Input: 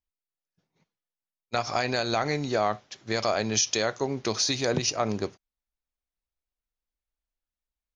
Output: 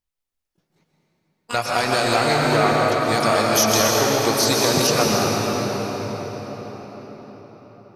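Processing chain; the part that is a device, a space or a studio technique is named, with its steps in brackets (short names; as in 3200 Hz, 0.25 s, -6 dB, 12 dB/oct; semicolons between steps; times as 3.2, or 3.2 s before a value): shimmer-style reverb (harmoniser +12 st -7 dB; reverb RT60 5.6 s, pre-delay 0.111 s, DRR -3 dB); gain +4 dB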